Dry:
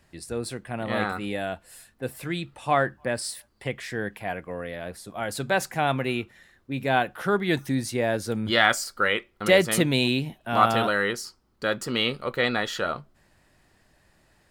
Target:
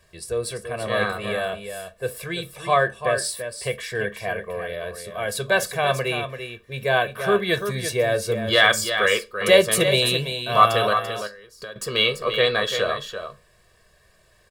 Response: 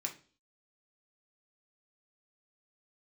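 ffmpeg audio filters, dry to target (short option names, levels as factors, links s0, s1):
-filter_complex "[0:a]aecho=1:1:1.8:0.97,asettb=1/sr,asplit=3[s0][s1][s2];[s0]atrim=end=10.934[s3];[s1]atrim=start=10.93:end=11.76,asetpts=PTS-STARTPTS,afade=t=in:d=0.004:c=qsin,afade=t=out:st=0.826:d=0.004:c=qsin,acompressor=threshold=0.0126:ratio=4[s4];[s2]atrim=start=11.756[s5];[s3][s4]acrossfade=d=0.004:c1=hsin:c2=qsin[s6];[s6][s5]acrossfade=d=0.004:c1=qsin:c2=hsin,aecho=1:1:339:0.376,asplit=2[s7][s8];[1:a]atrim=start_sample=2205,asetrate=66150,aresample=44100[s9];[s8][s9]afir=irnorm=-1:irlink=0,volume=0.891[s10];[s7][s10]amix=inputs=2:normalize=0,volume=0.841"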